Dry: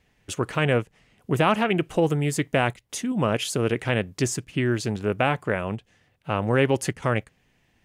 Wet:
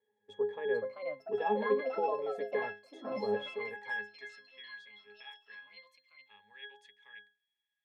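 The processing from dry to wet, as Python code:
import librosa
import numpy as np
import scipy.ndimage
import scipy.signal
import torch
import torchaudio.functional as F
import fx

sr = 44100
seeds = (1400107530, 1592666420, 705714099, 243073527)

y = fx.filter_sweep_highpass(x, sr, from_hz=470.0, to_hz=2700.0, start_s=3.29, end_s=4.85, q=2.0)
y = fx.octave_resonator(y, sr, note='G#', decay_s=0.31)
y = fx.echo_pitch(y, sr, ms=508, semitones=4, count=2, db_per_echo=-6.0)
y = y * librosa.db_to_amplitude(4.0)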